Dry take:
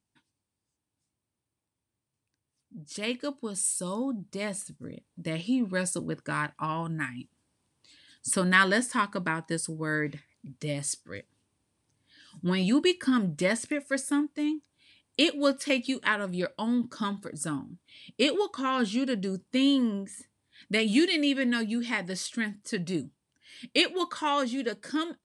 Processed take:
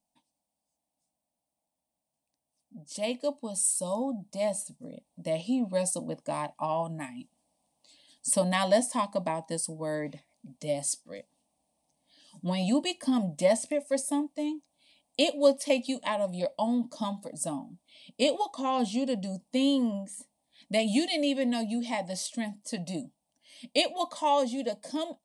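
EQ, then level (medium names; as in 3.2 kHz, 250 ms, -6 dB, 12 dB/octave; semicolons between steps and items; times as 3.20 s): peaking EQ 700 Hz +13.5 dB 0.86 oct; treble shelf 7.9 kHz +7 dB; static phaser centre 390 Hz, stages 6; -2.0 dB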